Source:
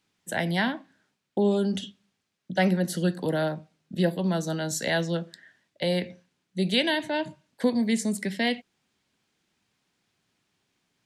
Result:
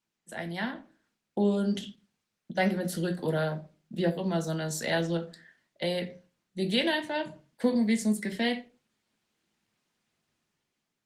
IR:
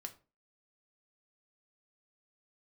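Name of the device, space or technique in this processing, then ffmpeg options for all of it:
far-field microphone of a smart speaker: -filter_complex "[0:a]asettb=1/sr,asplit=3[s0][s1][s2];[s0]atrim=end=3.994[s3];[s1]atrim=start=3.99:end=4.39,asetpts=PTS-STARTPTS,afade=t=in:d=0.004:c=qsin,afade=t=out:st=0.396:d=0.004:c=qsin,acrossover=split=6100[s4][s5];[s5]acompressor=threshold=0.00126:ratio=4:attack=1:release=60[s6];[s4][s6]amix=inputs=2:normalize=0[s7];[s2]atrim=start=4.386[s8];[s3][s7]acrossfade=d=0.004:c1=hsin:c2=qsin[s9];[s9][s8]acrossfade=d=0.004:c1=qsin:c2=hsin[s10];[1:a]atrim=start_sample=2205[s11];[s10][s11]afir=irnorm=-1:irlink=0,highpass=100,dynaudnorm=f=250:g=7:m=2.37,volume=0.531" -ar 48000 -c:a libopus -b:a 20k

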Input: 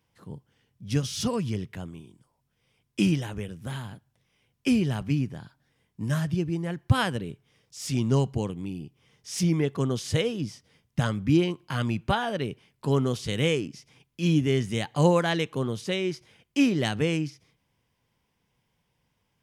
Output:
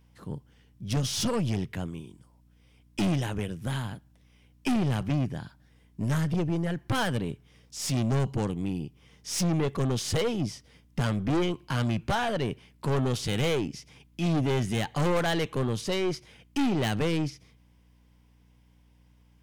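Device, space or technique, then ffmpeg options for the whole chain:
valve amplifier with mains hum: -af "aeval=exprs='(tanh(25.1*val(0)+0.35)-tanh(0.35))/25.1':c=same,aeval=exprs='val(0)+0.000631*(sin(2*PI*60*n/s)+sin(2*PI*2*60*n/s)/2+sin(2*PI*3*60*n/s)/3+sin(2*PI*4*60*n/s)/4+sin(2*PI*5*60*n/s)/5)':c=same,volume=1.78"

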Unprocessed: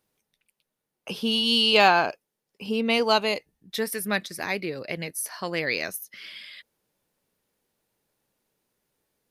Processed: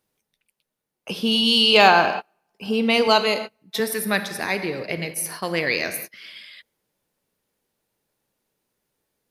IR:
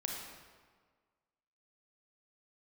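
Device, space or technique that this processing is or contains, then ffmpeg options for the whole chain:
keyed gated reverb: -filter_complex "[0:a]asplit=3[s0][s1][s2];[1:a]atrim=start_sample=2205[s3];[s1][s3]afir=irnorm=-1:irlink=0[s4];[s2]apad=whole_len=410450[s5];[s4][s5]sidechaingate=range=0.02:threshold=0.0126:ratio=16:detection=peak,volume=0.668[s6];[s0][s6]amix=inputs=2:normalize=0,asettb=1/sr,asplit=3[s7][s8][s9];[s7]atrim=end=3.074[s10];[s8]atrim=start=3.07:end=3.8,asetpts=PTS-STARTPTS,afade=t=in:d=0.004:c=qsin,afade=t=out:st=0.726:d=0.004:c=qsin,highpass=130[s11];[s9]atrim=start=3.796[s12];[s10][s11]acrossfade=d=0.004:c1=hsin:c2=qsin[s13];[s13][s12]acrossfade=d=0.004:c1=qsin:c2=hsin"

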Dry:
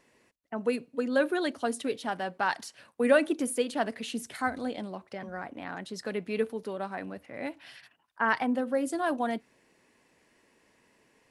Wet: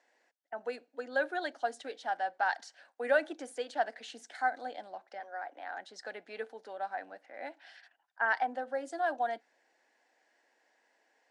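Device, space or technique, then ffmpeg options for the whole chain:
phone speaker on a table: -filter_complex "[0:a]highpass=f=350:w=0.5412,highpass=f=350:w=1.3066,equalizer=f=400:t=q:w=4:g=-9,equalizer=f=760:t=q:w=4:g=10,equalizer=f=1100:t=q:w=4:g=-7,equalizer=f=1600:t=q:w=4:g=7,equalizer=f=2600:t=q:w=4:g=-5,lowpass=f=7400:w=0.5412,lowpass=f=7400:w=1.3066,asettb=1/sr,asplit=3[s0][s1][s2];[s0]atrim=end=5.204[s3];[s1]atrim=start=5.2:end=5.77,asetpts=PTS-STARTPTS,afade=t=in:d=0.004:c=qsin,afade=t=out:st=0.566:d=0.004:c=qsin,highpass=f=310:w=0.5412,highpass=f=310:w=1.3066[s4];[s2]atrim=start=5.766[s5];[s3][s4]acrossfade=d=0.004:c1=hsin:c2=qsin[s6];[s6][s5]acrossfade=d=0.004:c1=qsin:c2=hsin,volume=0.501"

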